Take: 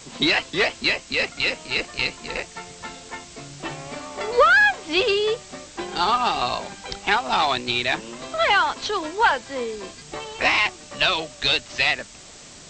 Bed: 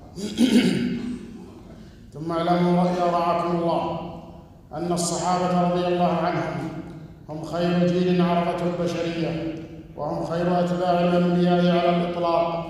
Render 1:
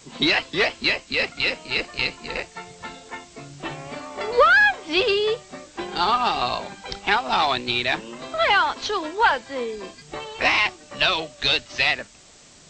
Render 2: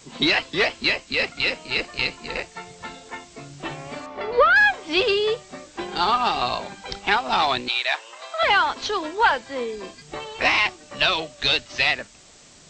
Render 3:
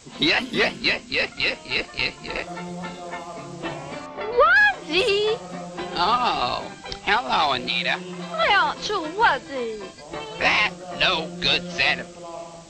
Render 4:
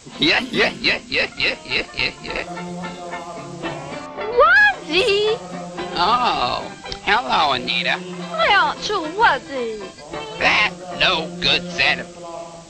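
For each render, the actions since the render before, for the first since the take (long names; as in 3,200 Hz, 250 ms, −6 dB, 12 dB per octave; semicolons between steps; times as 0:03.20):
noise reduction from a noise print 6 dB
0:04.06–0:04.56: high-frequency loss of the air 190 metres; 0:07.68–0:08.43: high-pass filter 620 Hz 24 dB per octave
mix in bed −15 dB
level +3.5 dB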